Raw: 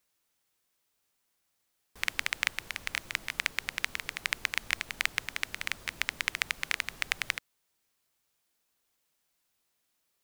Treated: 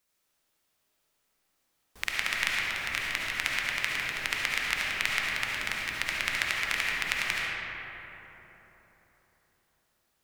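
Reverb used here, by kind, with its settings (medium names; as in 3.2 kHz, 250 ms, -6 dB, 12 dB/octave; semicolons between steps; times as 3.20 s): algorithmic reverb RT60 4 s, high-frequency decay 0.4×, pre-delay 30 ms, DRR -4.5 dB; trim -1 dB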